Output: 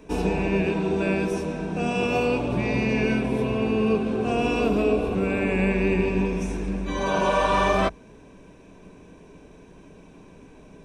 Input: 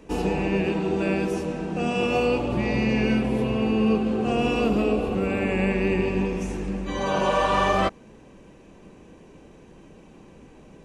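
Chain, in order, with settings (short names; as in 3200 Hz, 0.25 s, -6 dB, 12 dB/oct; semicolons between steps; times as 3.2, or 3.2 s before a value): ripple EQ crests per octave 1.6, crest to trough 6 dB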